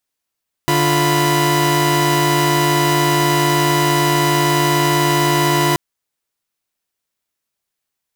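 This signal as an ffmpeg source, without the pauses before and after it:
ffmpeg -f lavfi -i "aevalsrc='0.178*((2*mod(146.83*t,1)-1)+(2*mod(349.23*t,1)-1)+(2*mod(987.77*t,1)-1))':duration=5.08:sample_rate=44100" out.wav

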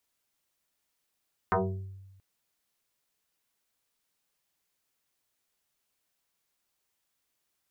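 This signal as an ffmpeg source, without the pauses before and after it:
ffmpeg -f lavfi -i "aevalsrc='0.0891*pow(10,-3*t/1.17)*sin(2*PI*96.5*t+5.4*pow(10,-3*t/0.64)*sin(2*PI*2.95*96.5*t))':duration=0.68:sample_rate=44100" out.wav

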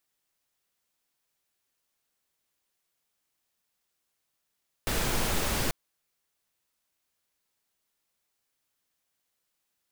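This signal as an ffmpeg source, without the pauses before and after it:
ffmpeg -f lavfi -i "anoisesrc=color=pink:amplitude=0.204:duration=0.84:sample_rate=44100:seed=1" out.wav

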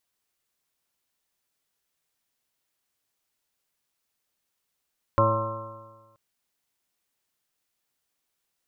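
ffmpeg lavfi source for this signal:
ffmpeg -f lavfi -i "aevalsrc='0.0794*pow(10,-3*t/1.35)*sin(2*PI*109.11*t)+0.0237*pow(10,-3*t/1.35)*sin(2*PI*218.87*t)+0.0355*pow(10,-3*t/1.35)*sin(2*PI*329.93*t)+0.0141*pow(10,-3*t/1.35)*sin(2*PI*442.92*t)+0.1*pow(10,-3*t/1.35)*sin(2*PI*558.46*t)+0.0106*pow(10,-3*t/1.35)*sin(2*PI*677.13*t)+0.00944*pow(10,-3*t/1.35)*sin(2*PI*799.51*t)+0.0251*pow(10,-3*t/1.35)*sin(2*PI*926.13*t)+0.112*pow(10,-3*t/1.35)*sin(2*PI*1057.48*t)+0.0178*pow(10,-3*t/1.35)*sin(2*PI*1194.04*t)+0.0398*pow(10,-3*t/1.35)*sin(2*PI*1336.23*t)':duration=0.98:sample_rate=44100" out.wav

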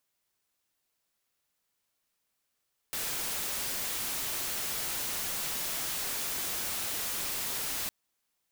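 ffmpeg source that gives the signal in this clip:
ffmpeg -f lavfi -i "anoisesrc=color=white:amplitude=0.0346:duration=4.96:sample_rate=44100:seed=1" out.wav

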